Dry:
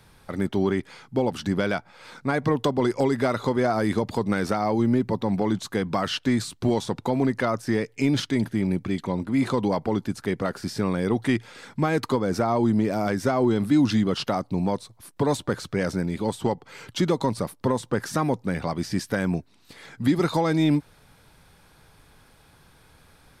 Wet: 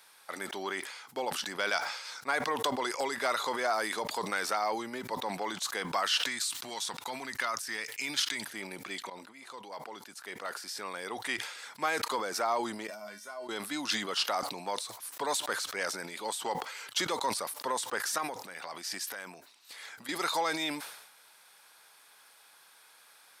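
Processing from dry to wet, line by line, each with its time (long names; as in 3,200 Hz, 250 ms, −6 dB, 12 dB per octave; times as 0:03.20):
0:01.72–0:02.22: parametric band 5,500 Hz +9 dB 0.72 octaves
0:06.26–0:08.47: parametric band 490 Hz −9.5 dB 1.8 octaves
0:09.10–0:11.86: fade in, from −22.5 dB
0:12.87–0:13.49: tuned comb filter 210 Hz, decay 0.31 s, harmonics odd, mix 90%
0:18.18–0:20.09: downward compressor, threshold −29 dBFS
whole clip: high-pass filter 830 Hz 12 dB per octave; high-shelf EQ 4,900 Hz +6.5 dB; level that may fall only so fast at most 61 dB per second; level −1.5 dB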